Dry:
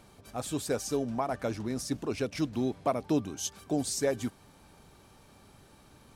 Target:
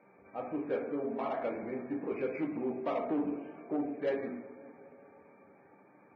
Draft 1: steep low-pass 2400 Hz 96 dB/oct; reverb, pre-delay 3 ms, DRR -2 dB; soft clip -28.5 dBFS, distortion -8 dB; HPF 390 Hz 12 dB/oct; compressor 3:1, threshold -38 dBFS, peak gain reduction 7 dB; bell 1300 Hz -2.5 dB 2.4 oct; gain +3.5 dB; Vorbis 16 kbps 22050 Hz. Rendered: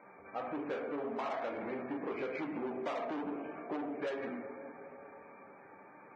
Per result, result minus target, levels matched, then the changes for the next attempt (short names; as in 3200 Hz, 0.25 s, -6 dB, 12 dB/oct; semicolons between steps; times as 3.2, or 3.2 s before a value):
compressor: peak gain reduction +7 dB; soft clip: distortion +7 dB; 1000 Hz band +3.5 dB
remove: compressor 3:1, threshold -38 dBFS, peak gain reduction 7 dB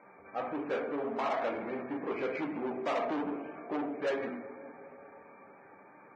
soft clip: distortion +7 dB; 1000 Hz band +4.0 dB
change: soft clip -21 dBFS, distortion -15 dB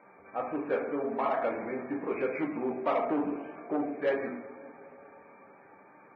1000 Hz band +3.5 dB
change: bell 1300 Hz -11.5 dB 2.4 oct